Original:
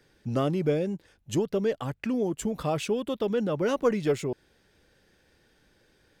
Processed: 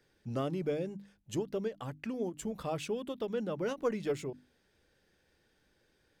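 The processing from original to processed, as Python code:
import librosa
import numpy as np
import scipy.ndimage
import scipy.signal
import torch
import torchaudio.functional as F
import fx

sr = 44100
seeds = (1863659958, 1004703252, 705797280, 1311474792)

y = fx.hum_notches(x, sr, base_hz=50, count=6)
y = fx.end_taper(y, sr, db_per_s=320.0)
y = y * 10.0 ** (-7.5 / 20.0)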